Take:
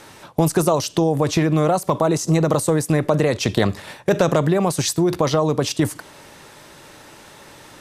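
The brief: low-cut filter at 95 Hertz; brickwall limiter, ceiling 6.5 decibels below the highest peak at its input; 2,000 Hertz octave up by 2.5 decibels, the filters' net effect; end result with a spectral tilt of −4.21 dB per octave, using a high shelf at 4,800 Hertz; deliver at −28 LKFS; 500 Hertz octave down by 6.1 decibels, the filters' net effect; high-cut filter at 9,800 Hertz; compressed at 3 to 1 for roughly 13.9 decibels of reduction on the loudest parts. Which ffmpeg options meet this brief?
ffmpeg -i in.wav -af "highpass=95,lowpass=9800,equalizer=frequency=500:width_type=o:gain=-8,equalizer=frequency=2000:width_type=o:gain=3,highshelf=frequency=4800:gain=3.5,acompressor=threshold=-35dB:ratio=3,volume=8.5dB,alimiter=limit=-15.5dB:level=0:latency=1" out.wav

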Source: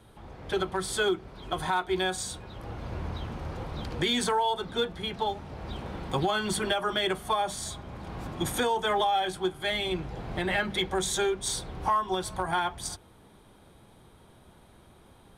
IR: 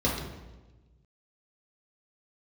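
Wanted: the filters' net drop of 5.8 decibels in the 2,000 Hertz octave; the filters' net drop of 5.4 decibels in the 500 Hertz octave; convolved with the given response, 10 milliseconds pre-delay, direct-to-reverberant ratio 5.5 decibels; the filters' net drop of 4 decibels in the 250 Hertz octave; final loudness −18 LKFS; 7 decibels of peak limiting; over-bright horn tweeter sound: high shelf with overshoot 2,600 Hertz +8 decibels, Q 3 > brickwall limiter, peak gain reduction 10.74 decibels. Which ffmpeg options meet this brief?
-filter_complex "[0:a]equalizer=frequency=250:width_type=o:gain=-3.5,equalizer=frequency=500:width_type=o:gain=-5.5,equalizer=frequency=2000:width_type=o:gain=-4,alimiter=level_in=0.5dB:limit=-24dB:level=0:latency=1,volume=-0.5dB,asplit=2[link_01][link_02];[1:a]atrim=start_sample=2205,adelay=10[link_03];[link_02][link_03]afir=irnorm=-1:irlink=0,volume=-17dB[link_04];[link_01][link_04]amix=inputs=2:normalize=0,highshelf=frequency=2600:width_type=q:width=3:gain=8,volume=12dB,alimiter=limit=-9dB:level=0:latency=1"

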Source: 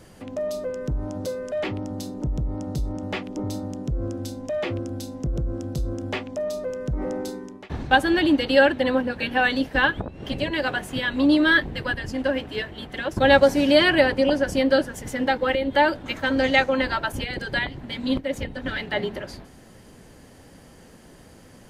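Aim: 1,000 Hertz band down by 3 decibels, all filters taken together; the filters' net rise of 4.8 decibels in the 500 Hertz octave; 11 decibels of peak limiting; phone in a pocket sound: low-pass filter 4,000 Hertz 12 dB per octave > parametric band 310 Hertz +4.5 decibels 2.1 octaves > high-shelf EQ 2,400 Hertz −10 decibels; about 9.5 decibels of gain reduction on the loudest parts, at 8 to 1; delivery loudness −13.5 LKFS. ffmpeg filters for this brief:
ffmpeg -i in.wav -af "equalizer=frequency=500:width_type=o:gain=4.5,equalizer=frequency=1000:width_type=o:gain=-6.5,acompressor=threshold=-19dB:ratio=8,alimiter=limit=-19.5dB:level=0:latency=1,lowpass=4000,equalizer=frequency=310:width_type=o:width=2.1:gain=4.5,highshelf=frequency=2400:gain=-10,volume=13.5dB" out.wav

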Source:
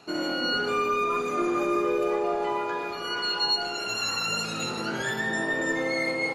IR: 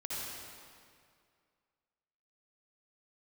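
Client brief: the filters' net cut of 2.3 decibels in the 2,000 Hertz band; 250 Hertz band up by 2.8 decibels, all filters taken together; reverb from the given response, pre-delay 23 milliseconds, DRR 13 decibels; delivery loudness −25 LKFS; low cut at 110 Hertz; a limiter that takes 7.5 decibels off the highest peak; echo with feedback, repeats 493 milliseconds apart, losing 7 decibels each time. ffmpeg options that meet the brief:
-filter_complex "[0:a]highpass=110,equalizer=frequency=250:width_type=o:gain=4.5,equalizer=frequency=2000:width_type=o:gain=-3,alimiter=limit=-22dB:level=0:latency=1,aecho=1:1:493|986|1479|1972|2465:0.447|0.201|0.0905|0.0407|0.0183,asplit=2[link_01][link_02];[1:a]atrim=start_sample=2205,adelay=23[link_03];[link_02][link_03]afir=irnorm=-1:irlink=0,volume=-15.5dB[link_04];[link_01][link_04]amix=inputs=2:normalize=0,volume=3.5dB"

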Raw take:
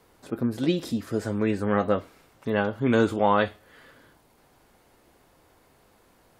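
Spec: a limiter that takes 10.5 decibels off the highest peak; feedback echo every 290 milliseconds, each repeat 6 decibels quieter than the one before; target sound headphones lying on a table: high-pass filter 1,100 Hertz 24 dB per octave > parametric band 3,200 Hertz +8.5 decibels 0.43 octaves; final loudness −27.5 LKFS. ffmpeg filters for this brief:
ffmpeg -i in.wav -af "alimiter=limit=-18.5dB:level=0:latency=1,highpass=frequency=1100:width=0.5412,highpass=frequency=1100:width=1.3066,equalizer=frequency=3200:width_type=o:width=0.43:gain=8.5,aecho=1:1:290|580|870|1160|1450|1740:0.501|0.251|0.125|0.0626|0.0313|0.0157,volume=11.5dB" out.wav

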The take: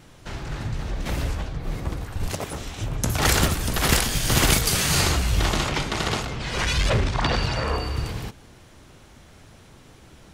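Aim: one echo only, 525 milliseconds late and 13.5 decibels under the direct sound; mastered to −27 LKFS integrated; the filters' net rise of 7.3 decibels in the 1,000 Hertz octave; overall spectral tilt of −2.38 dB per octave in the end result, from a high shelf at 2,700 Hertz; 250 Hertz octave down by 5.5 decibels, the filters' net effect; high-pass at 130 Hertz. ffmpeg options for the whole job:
ffmpeg -i in.wav -af "highpass=130,equalizer=frequency=250:width_type=o:gain=-8,equalizer=frequency=1000:width_type=o:gain=9,highshelf=frequency=2700:gain=4,aecho=1:1:525:0.211,volume=-6.5dB" out.wav

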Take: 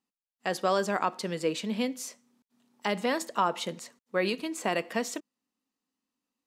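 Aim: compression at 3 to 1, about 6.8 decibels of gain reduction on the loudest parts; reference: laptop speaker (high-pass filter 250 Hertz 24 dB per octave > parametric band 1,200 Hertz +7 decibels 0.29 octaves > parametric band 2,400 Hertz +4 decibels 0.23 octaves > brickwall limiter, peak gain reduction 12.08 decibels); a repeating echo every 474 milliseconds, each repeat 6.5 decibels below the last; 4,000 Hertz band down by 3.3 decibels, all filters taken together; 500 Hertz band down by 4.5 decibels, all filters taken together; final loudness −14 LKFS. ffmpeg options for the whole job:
ffmpeg -i in.wav -af "equalizer=frequency=500:width_type=o:gain=-5.5,equalizer=frequency=4000:width_type=o:gain=-5,acompressor=threshold=-32dB:ratio=3,highpass=frequency=250:width=0.5412,highpass=frequency=250:width=1.3066,equalizer=frequency=1200:width_type=o:width=0.29:gain=7,equalizer=frequency=2400:width_type=o:width=0.23:gain=4,aecho=1:1:474|948|1422|1896|2370|2844:0.473|0.222|0.105|0.0491|0.0231|0.0109,volume=25.5dB,alimiter=limit=-2.5dB:level=0:latency=1" out.wav

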